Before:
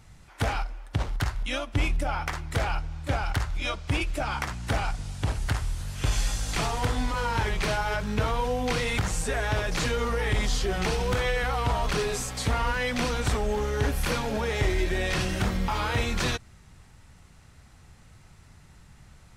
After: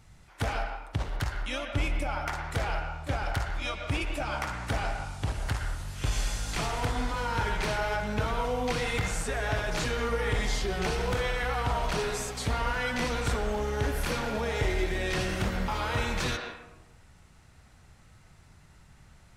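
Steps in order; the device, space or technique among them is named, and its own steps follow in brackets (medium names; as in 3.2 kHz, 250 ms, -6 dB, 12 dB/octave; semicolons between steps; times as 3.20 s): filtered reverb send (on a send: high-pass 400 Hz 12 dB/octave + low-pass 3.5 kHz + reverberation RT60 1.0 s, pre-delay 105 ms, DRR 3.5 dB); on the sum: trim -3.5 dB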